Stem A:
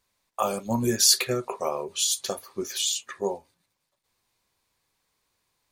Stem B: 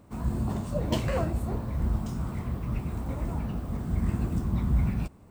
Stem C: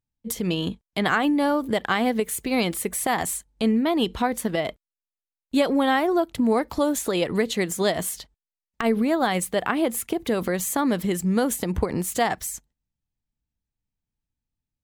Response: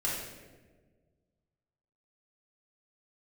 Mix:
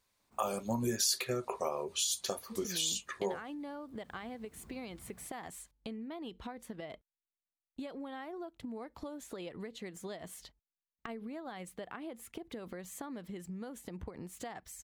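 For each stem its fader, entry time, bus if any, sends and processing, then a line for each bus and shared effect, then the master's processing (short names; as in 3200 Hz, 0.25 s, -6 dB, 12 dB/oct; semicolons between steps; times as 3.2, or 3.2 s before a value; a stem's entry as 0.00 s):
-3.0 dB, 0.00 s, no bus, no send, dry
-16.0 dB, 0.20 s, bus A, no send, low shelf 320 Hz -12 dB; auto duck -15 dB, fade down 1.00 s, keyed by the first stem
-10.5 dB, 2.25 s, bus A, no send, bell 14000 Hz -8 dB 1.5 oct
bus A: 0.0 dB, compressor, threshold -41 dBFS, peak gain reduction 14 dB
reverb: off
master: compressor 2.5:1, threshold -32 dBFS, peak gain reduction 10 dB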